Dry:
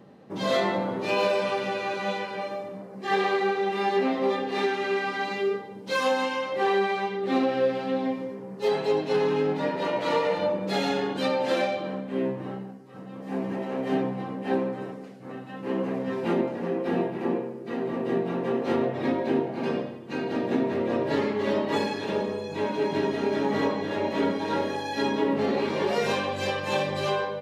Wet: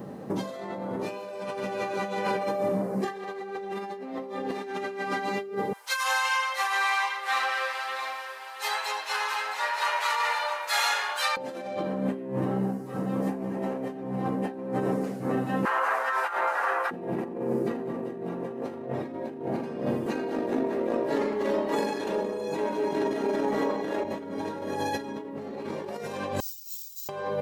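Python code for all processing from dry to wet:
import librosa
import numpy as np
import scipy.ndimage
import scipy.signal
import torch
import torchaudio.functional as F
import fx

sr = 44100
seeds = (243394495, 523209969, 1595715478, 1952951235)

y = fx.chain(x, sr, fx.highpass(hz=1100.0, slope=24),
    fx.echo_single(ms=670, db=-9.0), at=(5.73, 11.37))
y = fx.chain(y, sr, fx.highpass(hz=790.0, slope=24),
    fx.peak_eq(hz=1400.0, db=14.0, octaves=0.76), at=(15.65, 16.91))
y = fx.chain(y, sr, fx.highpass(hz=250.0, slope=12),
    fx.over_compress(threshold_db=-33.0, ratio=-1.0), at=(20.06, 24.05))
y = fx.chain(y, sr, fx.cheby2_highpass(hz=1600.0, order=4, stop_db=70),
    fx.resample_bad(factor=4, down='filtered', up='zero_stuff'), at=(26.4, 27.09))
y = fx.peak_eq(y, sr, hz=3400.0, db=-9.5, octaves=1.8)
y = fx.over_compress(y, sr, threshold_db=-37.0, ratio=-1.0)
y = fx.high_shelf(y, sr, hz=5700.0, db=7.5)
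y = F.gain(torch.from_numpy(y), 6.0).numpy()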